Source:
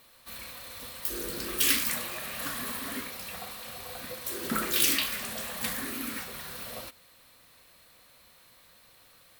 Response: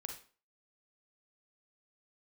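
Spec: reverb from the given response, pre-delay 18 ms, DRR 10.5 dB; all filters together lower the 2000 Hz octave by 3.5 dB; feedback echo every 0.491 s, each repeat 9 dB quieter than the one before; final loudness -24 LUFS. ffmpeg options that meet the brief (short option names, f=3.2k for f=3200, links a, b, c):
-filter_complex "[0:a]equalizer=f=2k:t=o:g=-4.5,aecho=1:1:491|982|1473|1964:0.355|0.124|0.0435|0.0152,asplit=2[a][b];[1:a]atrim=start_sample=2205,adelay=18[c];[b][c]afir=irnorm=-1:irlink=0,volume=-8dB[d];[a][d]amix=inputs=2:normalize=0,volume=6dB"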